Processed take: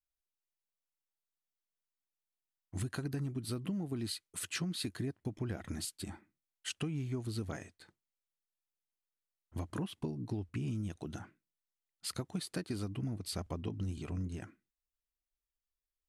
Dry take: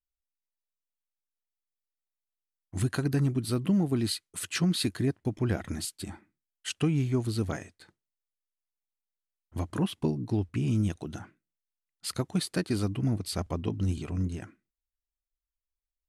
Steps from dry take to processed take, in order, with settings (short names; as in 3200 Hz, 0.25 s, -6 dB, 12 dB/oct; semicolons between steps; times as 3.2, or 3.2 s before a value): compressor, threshold -30 dBFS, peak gain reduction 8.5 dB; gain -4 dB